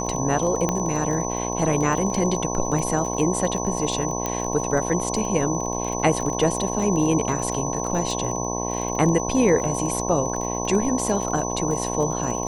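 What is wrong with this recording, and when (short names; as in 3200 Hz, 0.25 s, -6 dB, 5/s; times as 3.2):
buzz 60 Hz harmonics 18 -28 dBFS
crackle 22/s -27 dBFS
tone 6000 Hz -30 dBFS
0.69 pop -9 dBFS
4.26 pop -10 dBFS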